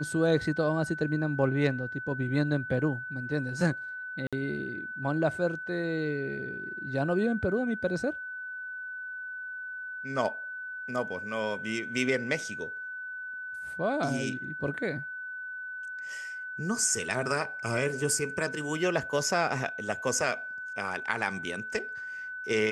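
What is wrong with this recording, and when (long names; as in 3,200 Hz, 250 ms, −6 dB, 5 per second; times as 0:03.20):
whistle 1,500 Hz −36 dBFS
0:04.27–0:04.33: drop-out 56 ms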